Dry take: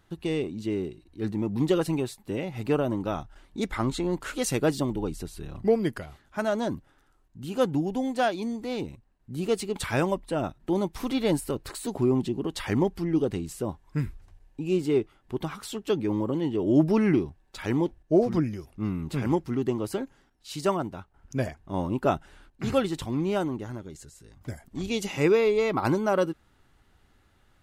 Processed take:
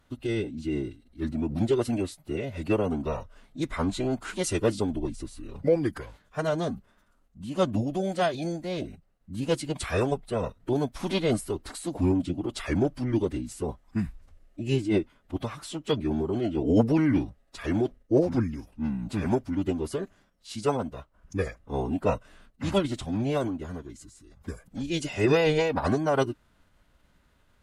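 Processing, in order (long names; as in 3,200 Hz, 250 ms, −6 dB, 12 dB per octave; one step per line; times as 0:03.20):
phase-vocoder pitch shift with formants kept −5.5 semitones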